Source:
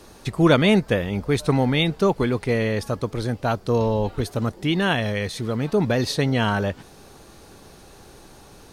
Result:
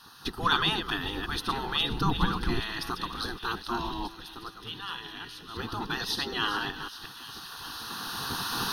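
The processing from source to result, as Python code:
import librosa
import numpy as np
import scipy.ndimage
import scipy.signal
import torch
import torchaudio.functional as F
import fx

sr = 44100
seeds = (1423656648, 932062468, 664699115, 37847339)

p1 = fx.reverse_delay(x, sr, ms=181, wet_db=-9)
p2 = fx.recorder_agc(p1, sr, target_db=-13.0, rise_db_per_s=11.0, max_gain_db=30)
p3 = fx.spec_gate(p2, sr, threshold_db=-10, keep='weak')
p4 = fx.low_shelf(p3, sr, hz=390.0, db=12.0, at=(1.9, 2.6))
p5 = fx.comb_fb(p4, sr, f0_hz=110.0, decay_s=1.1, harmonics='odd', damping=0.0, mix_pct=70, at=(4.06, 5.55), fade=0.02)
p6 = 10.0 ** (-21.0 / 20.0) * np.tanh(p5 / 10.0 ** (-21.0 / 20.0))
p7 = p5 + F.gain(torch.from_numpy(p6), -12.0).numpy()
p8 = fx.fixed_phaser(p7, sr, hz=2200.0, stages=6)
y = fx.echo_wet_highpass(p8, sr, ms=413, feedback_pct=79, hz=2800.0, wet_db=-12.0)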